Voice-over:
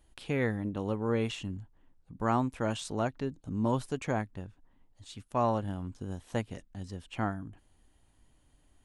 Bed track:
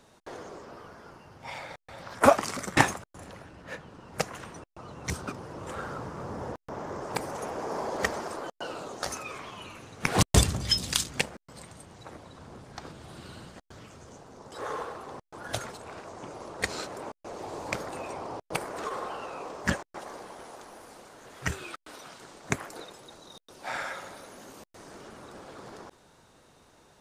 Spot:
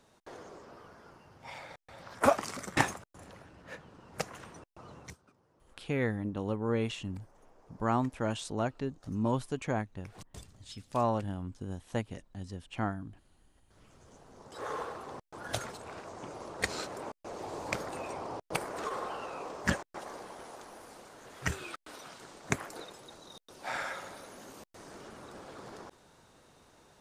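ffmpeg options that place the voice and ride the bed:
-filter_complex "[0:a]adelay=5600,volume=-1dB[a];[1:a]volume=20.5dB,afade=t=out:st=4.95:d=0.21:silence=0.0749894,afade=t=in:st=13.55:d=1.29:silence=0.0473151[b];[a][b]amix=inputs=2:normalize=0"

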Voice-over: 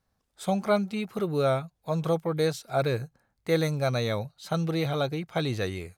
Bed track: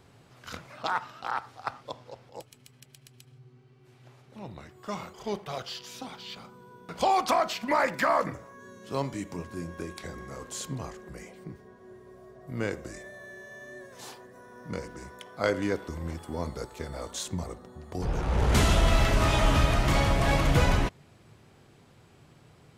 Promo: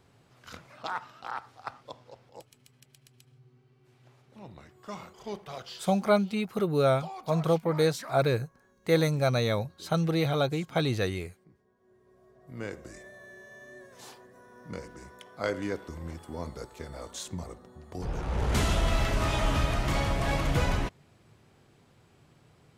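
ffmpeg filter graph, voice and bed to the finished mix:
-filter_complex "[0:a]adelay=5400,volume=1dB[a];[1:a]volume=9dB,afade=t=out:st=5.74:d=0.27:silence=0.223872,afade=t=in:st=11.75:d=1.29:silence=0.199526[b];[a][b]amix=inputs=2:normalize=0"

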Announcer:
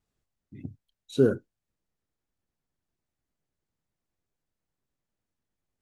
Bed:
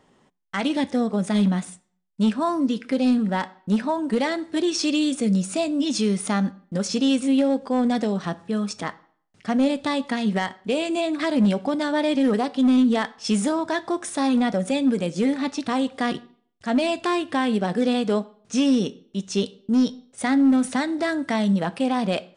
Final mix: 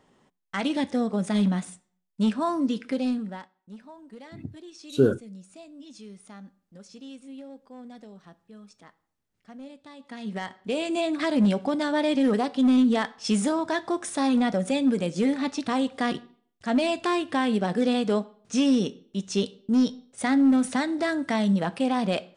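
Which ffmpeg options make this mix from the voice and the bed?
-filter_complex "[0:a]adelay=3800,volume=1.5dB[a];[1:a]volume=17.5dB,afade=t=out:st=2.81:d=0.68:silence=0.105925,afade=t=in:st=9.98:d=1.03:silence=0.0944061[b];[a][b]amix=inputs=2:normalize=0"

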